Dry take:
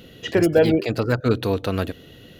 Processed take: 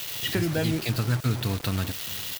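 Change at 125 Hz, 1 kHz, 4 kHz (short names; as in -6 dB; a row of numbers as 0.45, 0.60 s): -0.5, -6.5, +2.5 dB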